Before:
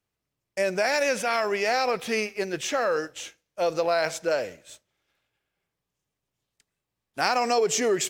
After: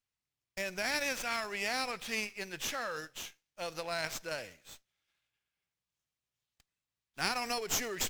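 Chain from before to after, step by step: passive tone stack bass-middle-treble 5-5-5; running maximum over 3 samples; gain +3 dB

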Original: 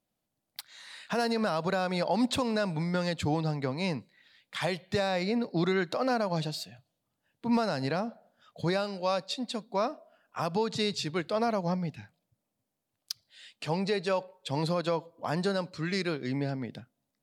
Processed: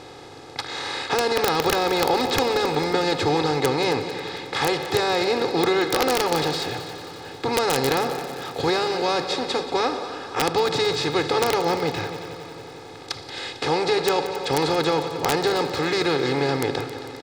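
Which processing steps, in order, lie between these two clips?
per-bin compression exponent 0.4; LPF 7100 Hz 12 dB/oct; comb 2.4 ms, depth 90%; wrapped overs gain 10 dB; multi-head echo 90 ms, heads second and third, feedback 64%, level -14 dB

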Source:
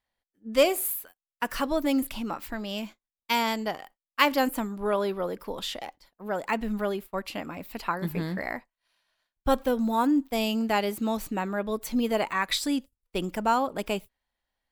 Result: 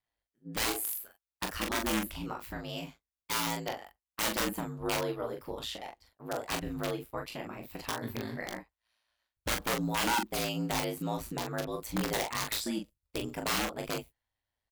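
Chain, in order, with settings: dynamic EQ 150 Hz, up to -4 dB, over -40 dBFS, Q 1.4; wrapped overs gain 19.5 dB; ring modulator 56 Hz; early reflections 22 ms -9.5 dB, 42 ms -5.5 dB; gain -3.5 dB

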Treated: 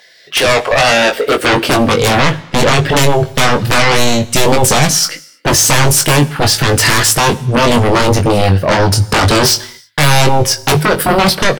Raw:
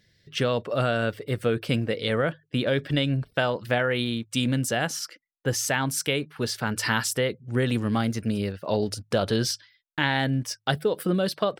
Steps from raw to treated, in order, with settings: high-pass sweep 750 Hz -> 110 Hz, 0.99–2.08; sine folder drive 19 dB, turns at -5.5 dBFS; doubler 21 ms -6 dB; on a send: reverb, pre-delay 3 ms, DRR 16.5 dB; on the sum: gain -2 dB

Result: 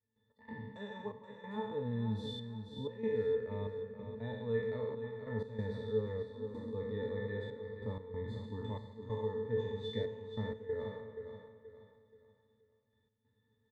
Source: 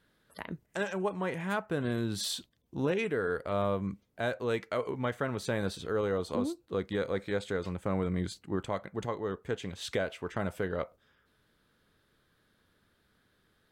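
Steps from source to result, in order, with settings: spectral trails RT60 1.45 s; high shelf 8200 Hz +7.5 dB; octave resonator A, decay 0.14 s; step gate ".x.xxxx..xxxxxx." 94 bpm -12 dB; feedback echo 0.477 s, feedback 36%, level -9 dB; gain +1.5 dB

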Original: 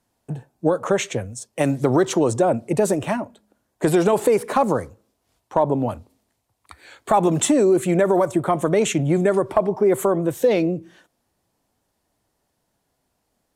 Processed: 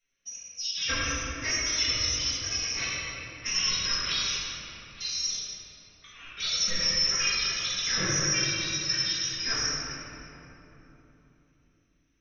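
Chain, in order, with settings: inverted band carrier 2900 Hz; time stretch by phase-locked vocoder 1.9×; bell 390 Hz +13 dB 0.26 oct; wide varispeed 2.11×; low shelf 65 Hz +7.5 dB; fixed phaser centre 2000 Hz, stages 4; reverb RT60 3.5 s, pre-delay 4 ms, DRR -11 dB; gain -4.5 dB

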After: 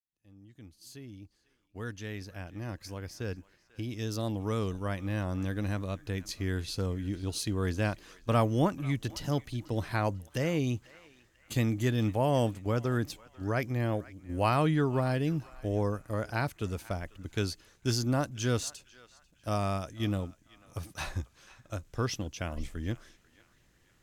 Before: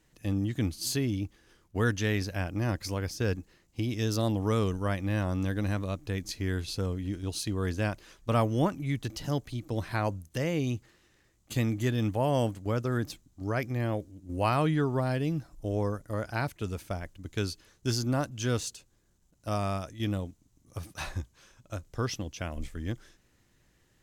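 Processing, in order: opening faded in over 7.48 s; narrowing echo 0.493 s, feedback 44%, band-pass 2000 Hz, level -18 dB

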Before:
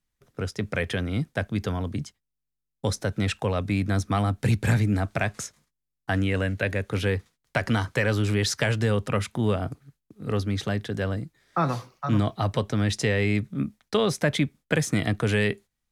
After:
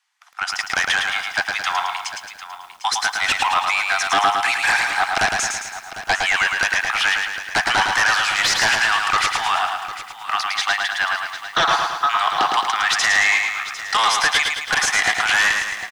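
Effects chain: steep high-pass 750 Hz 96 dB/oct; notch 3800 Hz, Q 21; sine folder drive 14 dB, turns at -12 dBFS; air absorption 63 m; echo 0.751 s -13.5 dB; lo-fi delay 0.109 s, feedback 55%, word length 8-bit, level -4 dB

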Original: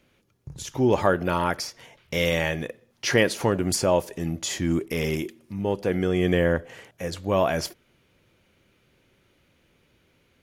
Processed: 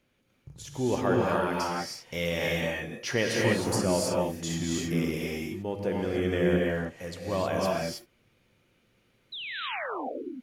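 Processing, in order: painted sound fall, 9.32–10.08, 240–4100 Hz -30 dBFS; non-linear reverb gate 0.34 s rising, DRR -2.5 dB; gain -8 dB

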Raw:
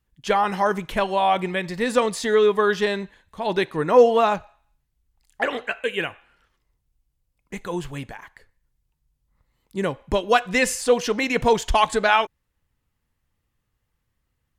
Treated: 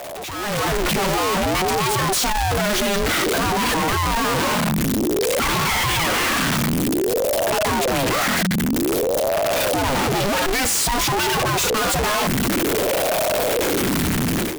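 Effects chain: infinite clipping; AGC gain up to 13 dB; ring modulator with a swept carrier 410 Hz, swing 55%, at 0.53 Hz; gain -6 dB

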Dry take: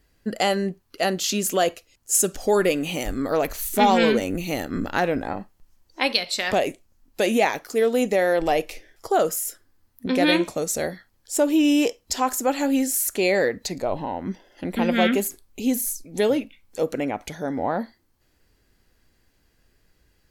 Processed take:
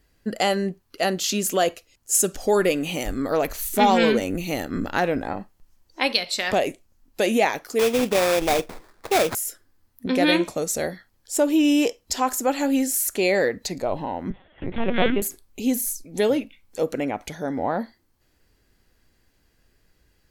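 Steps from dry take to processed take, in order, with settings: 7.79–9.35 sample-rate reducer 3000 Hz, jitter 20%; 14.3–15.22 LPC vocoder at 8 kHz pitch kept

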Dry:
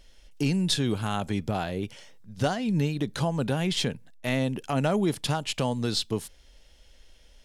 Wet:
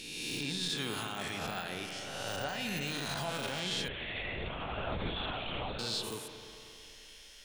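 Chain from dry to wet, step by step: spectral swells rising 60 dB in 1.19 s; de-esser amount 100%; tilt shelf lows -10 dB, about 920 Hz; in parallel at 0 dB: compressor, threshold -42 dBFS, peak gain reduction 18 dB; on the sum: limiter -17.5 dBFS, peak gain reduction 6.5 dB; spring tank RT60 2.8 s, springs 34/44 ms, chirp 75 ms, DRR 4.5 dB; 3.88–5.79 LPC vocoder at 8 kHz whisper; gain -8.5 dB

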